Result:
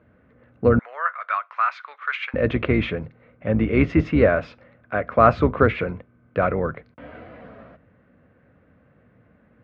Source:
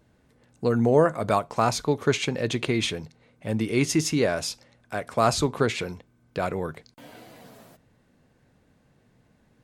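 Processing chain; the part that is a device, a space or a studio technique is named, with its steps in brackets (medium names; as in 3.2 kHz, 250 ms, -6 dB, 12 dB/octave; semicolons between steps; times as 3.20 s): sub-octave bass pedal (octave divider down 2 oct, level -2 dB; cabinet simulation 70–2300 Hz, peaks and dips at 140 Hz -4 dB, 370 Hz -4 dB, 540 Hz +4 dB, 870 Hz -7 dB, 1.3 kHz +5 dB); 0.79–2.34 s: high-pass 1.2 kHz 24 dB/octave; trim +6 dB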